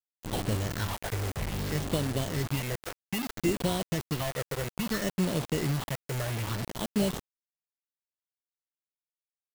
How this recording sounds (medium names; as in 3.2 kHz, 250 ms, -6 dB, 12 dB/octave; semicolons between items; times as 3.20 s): aliases and images of a low sample rate 2.4 kHz, jitter 0%; phasing stages 6, 0.61 Hz, lowest notch 240–1800 Hz; a quantiser's noise floor 6-bit, dither none